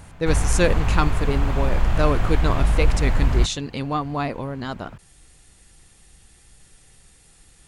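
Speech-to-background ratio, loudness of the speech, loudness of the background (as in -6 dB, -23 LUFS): -2.5 dB, -26.0 LUFS, -23.5 LUFS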